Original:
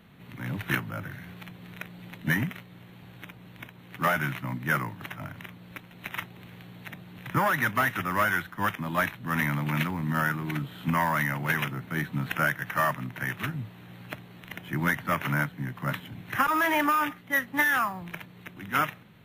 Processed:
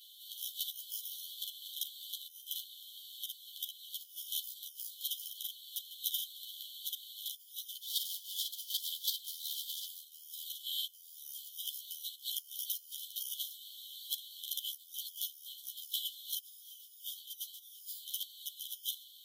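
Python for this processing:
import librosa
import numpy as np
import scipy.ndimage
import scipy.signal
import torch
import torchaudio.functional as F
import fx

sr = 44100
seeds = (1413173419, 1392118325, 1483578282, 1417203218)

y = fx.lower_of_two(x, sr, delay_ms=3.8, at=(7.81, 9.85))
y = fx.high_shelf(y, sr, hz=4200.0, db=5.0)
y = fx.over_compress(y, sr, threshold_db=-33.0, ratio=-0.5)
y = fx.brickwall_highpass(y, sr, low_hz=3000.0)
y = fx.ensemble(y, sr)
y = y * 10.0 ** (9.0 / 20.0)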